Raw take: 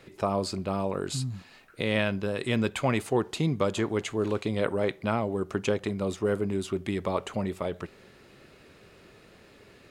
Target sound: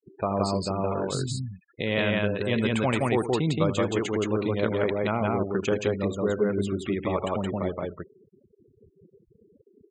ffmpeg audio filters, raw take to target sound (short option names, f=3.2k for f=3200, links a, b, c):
-af "aecho=1:1:81.63|172:0.251|0.891,afftfilt=real='re*gte(hypot(re,im),0.0141)':imag='im*gte(hypot(re,im),0.0141)':win_size=1024:overlap=0.75"